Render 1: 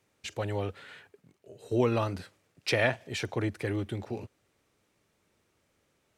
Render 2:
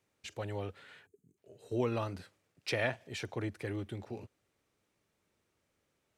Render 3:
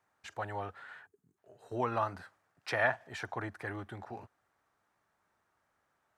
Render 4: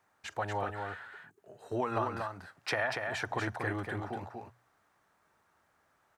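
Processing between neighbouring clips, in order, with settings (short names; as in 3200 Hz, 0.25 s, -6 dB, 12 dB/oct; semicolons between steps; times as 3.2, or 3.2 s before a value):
spectral gain 1.06–1.38, 470–6200 Hz -21 dB; gain -6.5 dB
band shelf 1100 Hz +13 dB; gain -4.5 dB
notches 60/120 Hz; compressor 12:1, threshold -33 dBFS, peak gain reduction 10.5 dB; on a send: echo 0.239 s -5 dB; on the sum: gain +5 dB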